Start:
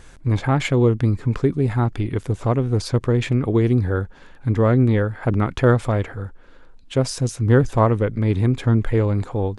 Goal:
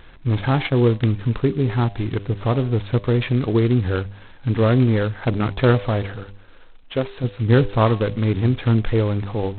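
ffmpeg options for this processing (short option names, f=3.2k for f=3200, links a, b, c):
-filter_complex "[0:a]bandreject=f=99.6:t=h:w=4,bandreject=f=199.2:t=h:w=4,bandreject=f=298.8:t=h:w=4,bandreject=f=398.4:t=h:w=4,bandreject=f=498:t=h:w=4,bandreject=f=597.6:t=h:w=4,bandreject=f=697.2:t=h:w=4,bandreject=f=796.8:t=h:w=4,bandreject=f=896.4:t=h:w=4,bandreject=f=996:t=h:w=4,bandreject=f=1.0956k:t=h:w=4,asplit=3[a][b][c];[a]afade=t=out:st=0.53:d=0.02[d];[b]agate=range=-33dB:threshold=-20dB:ratio=3:detection=peak,afade=t=in:st=0.53:d=0.02,afade=t=out:st=1.17:d=0.02[e];[c]afade=t=in:st=1.17:d=0.02[f];[d][e][f]amix=inputs=3:normalize=0,asettb=1/sr,asplit=3[g][h][i];[g]atrim=end=6.234[j];[h]atrim=start=6.23:end=7.24,asetpts=PTS-STARTPTS,afade=t=in:d=0.004:c=qsin,afade=t=out:st=1.006:d=0.004:c=qsin,equalizer=f=120:t=o:w=1.6:g=-7.5[k];[i]atrim=start=7.236[l];[j][k]acrossfade=d=0.004:c1=hsin:c2=qsin[m];[m][l]acrossfade=d=0.004:c1=qsin:c2=hsin" -ar 8000 -c:a adpcm_g726 -b:a 16k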